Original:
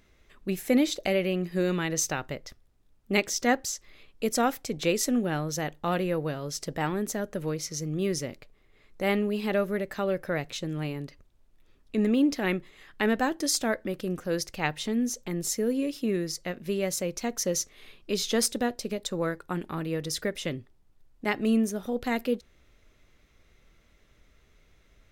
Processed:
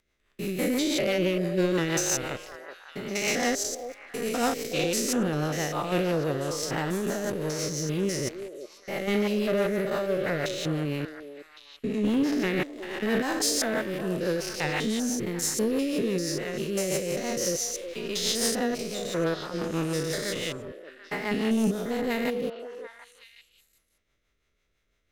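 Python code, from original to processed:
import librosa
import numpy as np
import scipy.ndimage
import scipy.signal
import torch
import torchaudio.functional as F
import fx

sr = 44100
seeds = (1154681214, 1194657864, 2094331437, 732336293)

p1 = fx.spec_steps(x, sr, hold_ms=200)
p2 = fx.low_shelf(p1, sr, hz=440.0, db=-7.5)
p3 = fx.leveller(p2, sr, passes=3)
p4 = fx.rotary(p3, sr, hz=6.0)
y = p4 + fx.echo_stepped(p4, sr, ms=370, hz=490.0, octaves=1.4, feedback_pct=70, wet_db=-6.5, dry=0)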